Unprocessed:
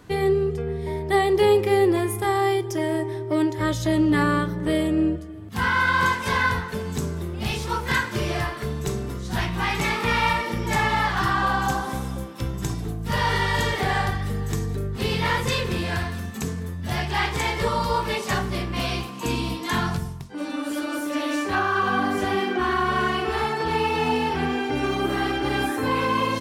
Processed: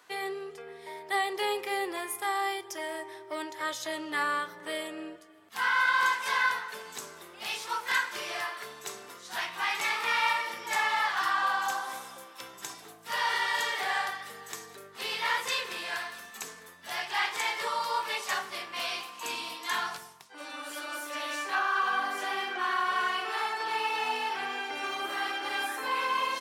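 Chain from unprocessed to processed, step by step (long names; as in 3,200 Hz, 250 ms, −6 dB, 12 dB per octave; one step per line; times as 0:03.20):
high-pass filter 830 Hz 12 dB per octave
level −3.5 dB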